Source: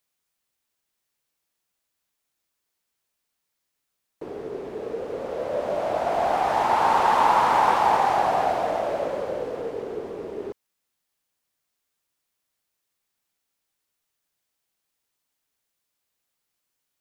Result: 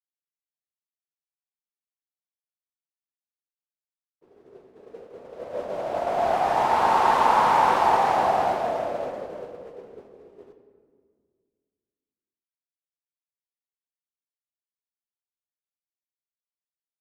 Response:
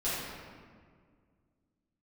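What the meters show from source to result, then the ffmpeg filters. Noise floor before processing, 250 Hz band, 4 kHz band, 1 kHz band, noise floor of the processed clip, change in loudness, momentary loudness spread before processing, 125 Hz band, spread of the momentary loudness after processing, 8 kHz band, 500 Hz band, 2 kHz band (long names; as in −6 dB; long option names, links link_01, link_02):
−80 dBFS, −2.0 dB, −0.5 dB, 0.0 dB, below −85 dBFS, +1.0 dB, 16 LU, −1.0 dB, 17 LU, can't be measured, −1.5 dB, −0.5 dB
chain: -filter_complex "[0:a]agate=range=-33dB:threshold=-21dB:ratio=3:detection=peak,asplit=2[link_01][link_02];[1:a]atrim=start_sample=2205[link_03];[link_02][link_03]afir=irnorm=-1:irlink=0,volume=-11.5dB[link_04];[link_01][link_04]amix=inputs=2:normalize=0,volume=-2.5dB"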